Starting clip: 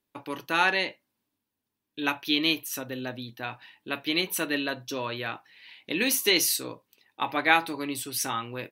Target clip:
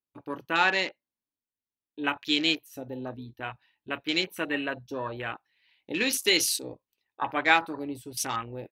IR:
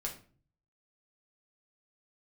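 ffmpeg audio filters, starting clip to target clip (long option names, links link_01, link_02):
-af "afwtdn=0.0178,asubboost=boost=4:cutoff=73"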